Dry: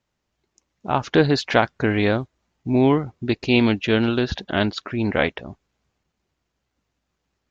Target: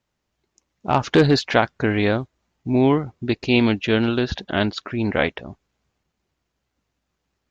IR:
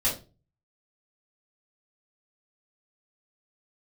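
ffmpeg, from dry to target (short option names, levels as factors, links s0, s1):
-filter_complex "[0:a]asettb=1/sr,asplit=3[s0][s1][s2];[s0]atrim=end=0.884[s3];[s1]atrim=start=0.88:end=1.39,asetpts=PTS-STARTPTS,afade=t=in:d=0.004:c=qsin,afade=t=out:st=0.506:d=0.004:c=qsin,aeval=exprs='0.708*(cos(1*acos(clip(val(0)/0.708,-1,1)))-cos(1*PI/2))+0.0794*(cos(5*acos(clip(val(0)/0.708,-1,1)))-cos(5*PI/2))':c=same[s4];[s2]atrim=start=1.386[s5];[s3][s4]acrossfade=d=0.004:c1=hsin:c2=qsin[s6];[s6][s5]acrossfade=d=0.004:c1=qsin:c2=hsin"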